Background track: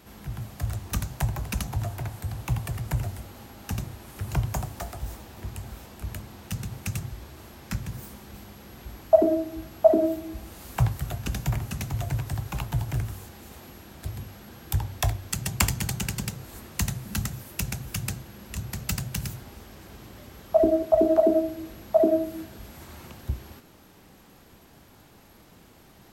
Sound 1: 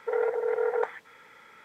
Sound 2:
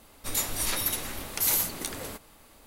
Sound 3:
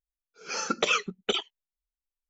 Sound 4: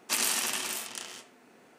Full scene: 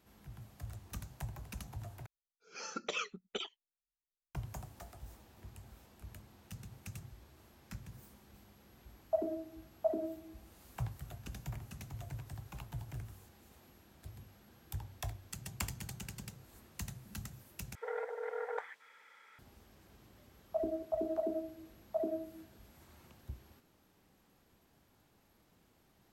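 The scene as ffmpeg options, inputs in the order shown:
-filter_complex "[0:a]volume=0.158[s0];[1:a]highpass=f=1000:p=1[s1];[s0]asplit=3[s2][s3][s4];[s2]atrim=end=2.064[s5];[3:a]atrim=end=2.29,asetpts=PTS-STARTPTS,volume=0.224[s6];[s3]atrim=start=4.346:end=17.754[s7];[s1]atrim=end=1.64,asetpts=PTS-STARTPTS,volume=0.501[s8];[s4]atrim=start=19.386[s9];[s5][s6]acrossfade=d=0.004:c1=hsin:c2=hsin[s10];[s10][s7]acrossfade=d=0.004:c1=hsin:c2=hsin[s11];[s11][s8]acrossfade=d=0.004:c1=hsin:c2=hsin[s12];[s12][s9]acrossfade=d=0.004:c1=hsin:c2=hsin"

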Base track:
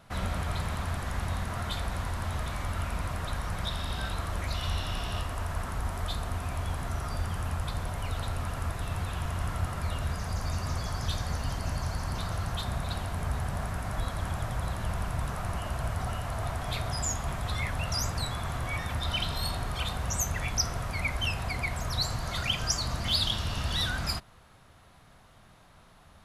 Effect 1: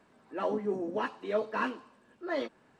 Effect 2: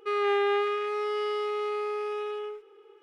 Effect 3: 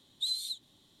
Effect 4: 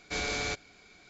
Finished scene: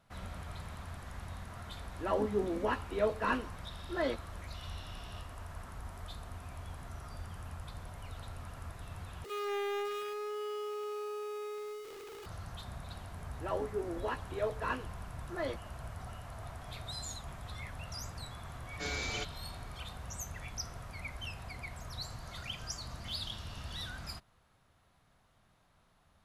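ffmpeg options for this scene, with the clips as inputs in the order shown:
-filter_complex "[1:a]asplit=2[s0][s1];[0:a]volume=0.237[s2];[2:a]aeval=exprs='val(0)+0.5*0.0299*sgn(val(0))':c=same[s3];[s1]highpass=f=270:w=0.5412,highpass=f=270:w=1.3066[s4];[4:a]asplit=2[s5][s6];[s6]adelay=6.2,afreqshift=-2.1[s7];[s5][s7]amix=inputs=2:normalize=1[s8];[s2]asplit=2[s9][s10];[s9]atrim=end=9.244[s11];[s3]atrim=end=3.02,asetpts=PTS-STARTPTS,volume=0.251[s12];[s10]atrim=start=12.256[s13];[s0]atrim=end=2.79,asetpts=PTS-STARTPTS,volume=0.944,afade=t=in:d=0.004:c=hsin,afade=t=out:st=2.786:d=0.004:c=hsin,adelay=1680[s14];[s4]atrim=end=2.79,asetpts=PTS-STARTPTS,volume=0.631,afade=t=in:d=0.004:c=hsin,afade=t=out:st=2.786:d=0.004:c=hsin,adelay=13080[s15];[3:a]atrim=end=1,asetpts=PTS-STARTPTS,volume=0.237,afade=t=in:d=0.004:c=hsin,afade=t=out:st=0.996:d=0.004:c=hsin,adelay=16660[s16];[s8]atrim=end=1.09,asetpts=PTS-STARTPTS,volume=0.75,afade=t=in:d=0.004:c=hsin,afade=t=out:st=1.086:d=0.004:c=hsin,adelay=18690[s17];[s11][s12]acrossfade=d=0.004:c1=hsin:c2=hsin[s18];[s18][s13]acrossfade=d=0.004:c1=hsin:c2=hsin[s19];[s19][s14][s15][s16][s17]amix=inputs=5:normalize=0"

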